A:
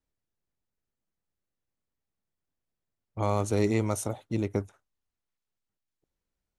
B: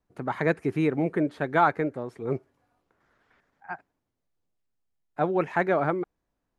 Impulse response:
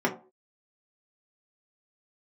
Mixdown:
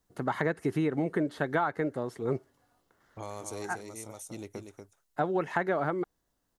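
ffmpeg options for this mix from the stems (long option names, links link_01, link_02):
-filter_complex "[0:a]bass=frequency=250:gain=-7,treble=frequency=4000:gain=10,acompressor=threshold=-44dB:ratio=2,volume=-1dB,asplit=2[link_01][link_02];[link_02]volume=-6.5dB[link_03];[1:a]acrossover=split=3100[link_04][link_05];[link_05]acompressor=threshold=-53dB:ratio=4:attack=1:release=60[link_06];[link_04][link_06]amix=inputs=2:normalize=0,highshelf=frequency=3200:gain=9.5,bandreject=frequency=2400:width=5.9,volume=0.5dB,asplit=2[link_07][link_08];[link_08]apad=whole_len=290456[link_09];[link_01][link_09]sidechaincompress=threshold=-42dB:ratio=8:attack=24:release=501[link_10];[link_03]aecho=0:1:238:1[link_11];[link_10][link_07][link_11]amix=inputs=3:normalize=0,acompressor=threshold=-24dB:ratio=10"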